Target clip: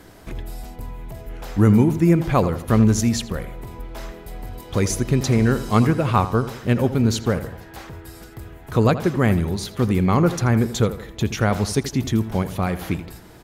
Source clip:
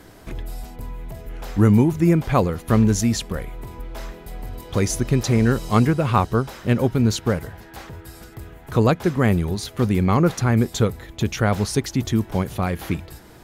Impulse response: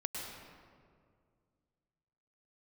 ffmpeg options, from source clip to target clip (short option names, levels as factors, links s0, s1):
-filter_complex "[0:a]asplit=2[s0][s1];[s1]adelay=82,lowpass=f=2800:p=1,volume=0.237,asplit=2[s2][s3];[s3]adelay=82,lowpass=f=2800:p=1,volume=0.46,asplit=2[s4][s5];[s5]adelay=82,lowpass=f=2800:p=1,volume=0.46,asplit=2[s6][s7];[s7]adelay=82,lowpass=f=2800:p=1,volume=0.46,asplit=2[s8][s9];[s9]adelay=82,lowpass=f=2800:p=1,volume=0.46[s10];[s0][s2][s4][s6][s8][s10]amix=inputs=6:normalize=0"